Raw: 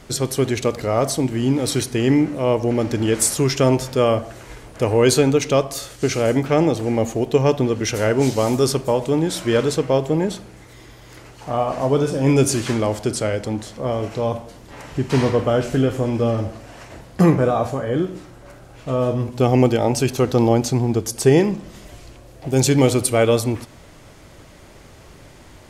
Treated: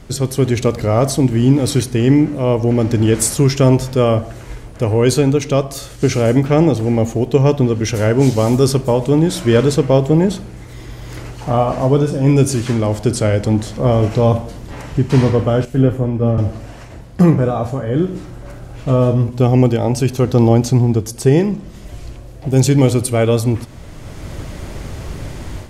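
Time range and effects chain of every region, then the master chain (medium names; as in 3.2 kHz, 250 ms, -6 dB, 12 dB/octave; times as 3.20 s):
15.65–16.38 s: peaking EQ 5.5 kHz -9 dB 2.1 oct + three bands expanded up and down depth 100%
whole clip: bass shelf 230 Hz +10 dB; level rider; trim -1 dB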